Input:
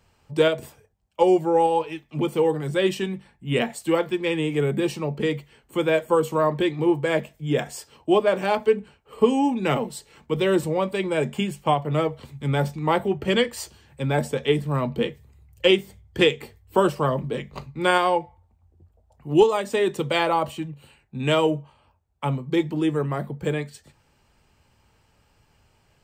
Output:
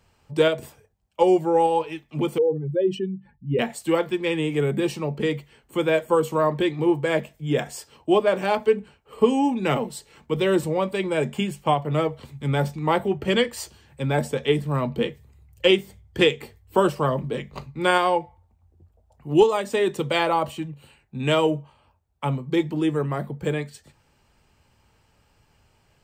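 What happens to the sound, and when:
2.38–3.59 s: spectral contrast enhancement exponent 2.2

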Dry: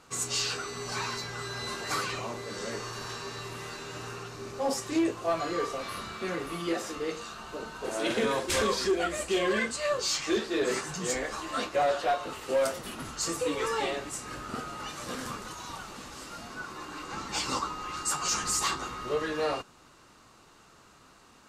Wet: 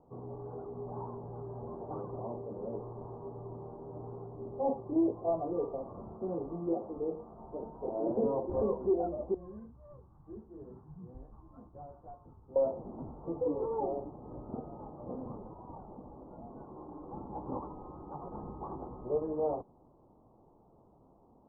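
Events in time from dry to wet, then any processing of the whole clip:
9.34–12.56 s: FFT filter 100 Hz 0 dB, 580 Hz -25 dB, 1.5 kHz -6 dB
whole clip: steep low-pass 900 Hz 48 dB/octave; trim -1.5 dB

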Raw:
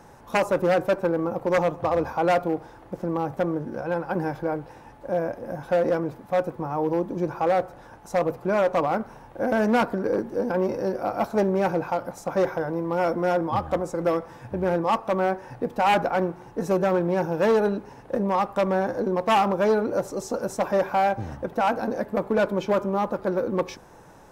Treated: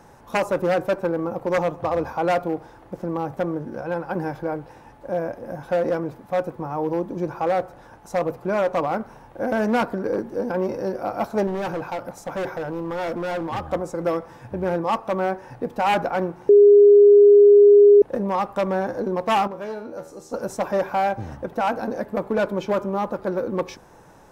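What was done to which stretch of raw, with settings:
11.47–13.67 s: hard clipper -23.5 dBFS
16.49–18.02 s: bleep 409 Hz -7.5 dBFS
19.47–20.33 s: feedback comb 80 Hz, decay 0.53 s, mix 80%

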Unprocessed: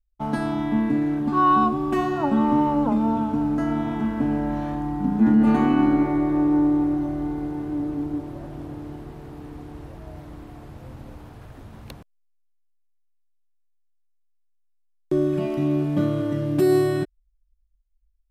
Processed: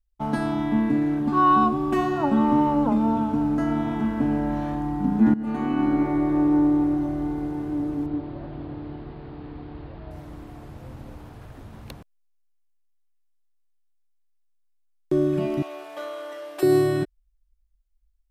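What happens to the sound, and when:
5.34–6.54 s: fade in equal-power, from -17 dB
8.06–10.11 s: steep low-pass 4.7 kHz 72 dB/octave
15.62–16.63 s: high-pass 600 Hz 24 dB/octave

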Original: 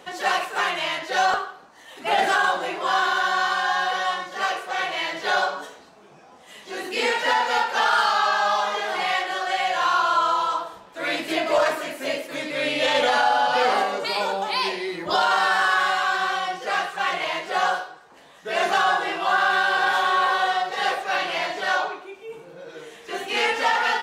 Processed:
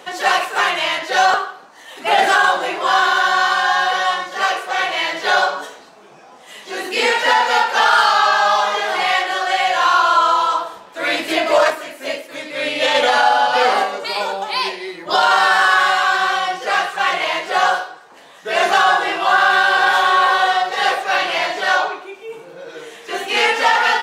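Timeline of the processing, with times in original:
11.70–15.23 s: upward expansion, over -32 dBFS
whole clip: bass shelf 170 Hz -11 dB; trim +7 dB

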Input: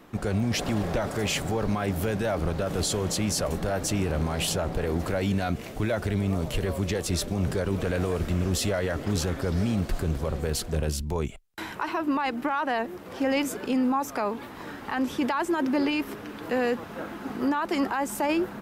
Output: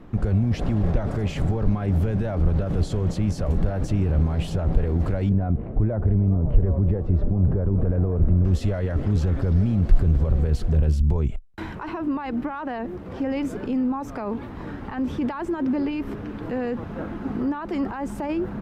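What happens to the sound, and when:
5.29–8.45 s: low-pass 1 kHz
whole clip: peak limiter -23.5 dBFS; RIAA curve playback

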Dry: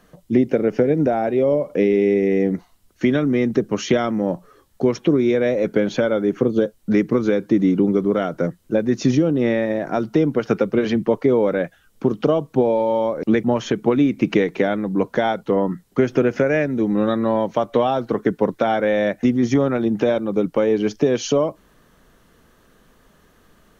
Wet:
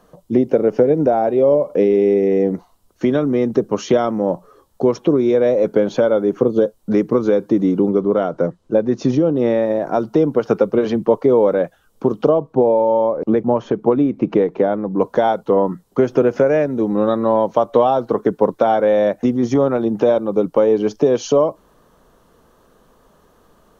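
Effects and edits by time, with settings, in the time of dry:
7.89–9.36 s: distance through air 72 m
12.29–15.00 s: low-pass 1.4 kHz 6 dB/octave
whole clip: ten-band graphic EQ 500 Hz +5 dB, 1 kHz +7 dB, 2 kHz -7 dB; trim -1 dB

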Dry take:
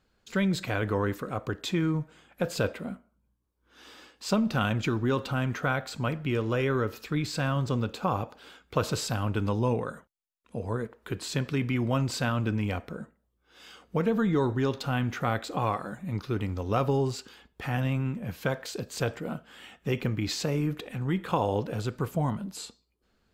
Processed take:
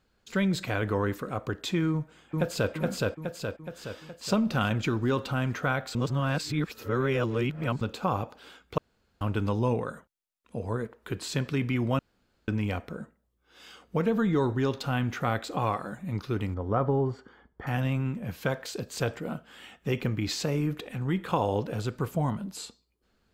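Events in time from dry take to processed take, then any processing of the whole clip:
1.91–2.72 s: echo throw 420 ms, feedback 55%, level -1 dB
5.95–7.81 s: reverse
8.78–9.21 s: room tone
11.99–12.48 s: room tone
16.54–17.67 s: Savitzky-Golay filter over 41 samples

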